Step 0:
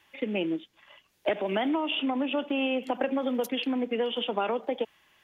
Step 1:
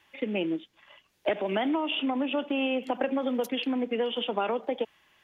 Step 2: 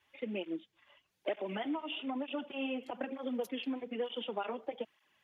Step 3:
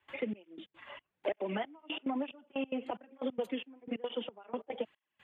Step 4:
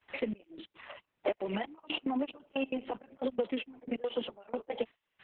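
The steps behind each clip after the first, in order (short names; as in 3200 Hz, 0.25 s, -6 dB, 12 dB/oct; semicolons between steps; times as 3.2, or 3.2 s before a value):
high shelf 8300 Hz -4.5 dB
tape flanging out of phase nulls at 1.1 Hz, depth 6.5 ms; gain -6.5 dB
running mean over 8 samples; step gate ".xxx...x" 182 bpm -24 dB; three-band squash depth 70%; gain +3.5 dB
gain +3 dB; Opus 6 kbps 48000 Hz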